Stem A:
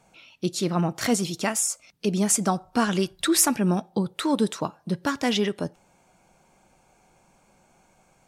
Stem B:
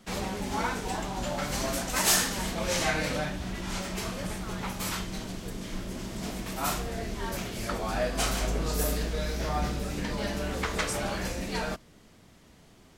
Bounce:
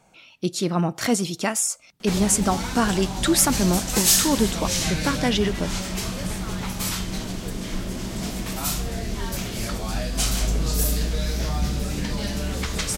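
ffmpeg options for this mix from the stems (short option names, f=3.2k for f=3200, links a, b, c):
-filter_complex "[0:a]volume=-4dB[a];[1:a]acrossover=split=230|3000[b][c][d];[c]acompressor=threshold=-41dB:ratio=6[e];[b][e][d]amix=inputs=3:normalize=0,adelay=2000,volume=2dB[f];[a][f]amix=inputs=2:normalize=0,acontrast=42"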